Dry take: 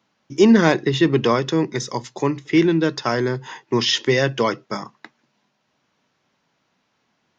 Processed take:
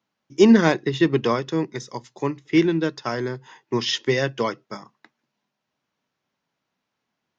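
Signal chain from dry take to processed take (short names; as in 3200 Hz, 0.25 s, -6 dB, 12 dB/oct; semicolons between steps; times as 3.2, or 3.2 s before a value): upward expander 1.5:1, over -31 dBFS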